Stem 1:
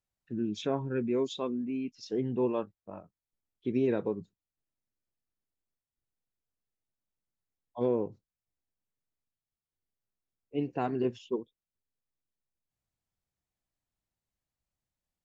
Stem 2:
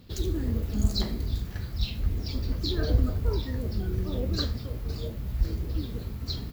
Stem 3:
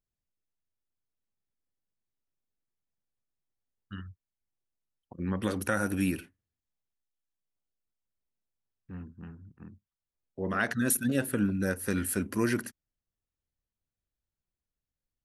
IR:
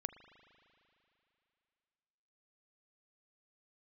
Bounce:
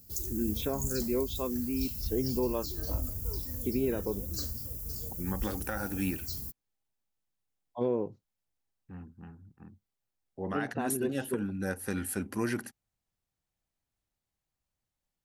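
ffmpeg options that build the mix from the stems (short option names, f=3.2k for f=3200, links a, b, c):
-filter_complex "[0:a]volume=1dB[a];[1:a]lowshelf=f=400:g=5.5,aexciter=amount=11.9:drive=9.2:freq=5.7k,volume=-15dB[b];[2:a]equalizer=f=800:t=o:w=0.21:g=12,volume=-3.5dB[c];[a][b][c]amix=inputs=3:normalize=0,alimiter=limit=-20dB:level=0:latency=1:release=367"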